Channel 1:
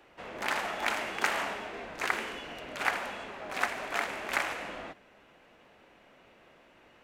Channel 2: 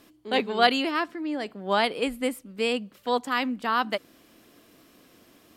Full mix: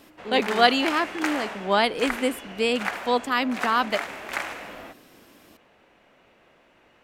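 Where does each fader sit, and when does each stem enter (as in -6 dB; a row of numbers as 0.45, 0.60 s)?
+0.5, +2.5 dB; 0.00, 0.00 s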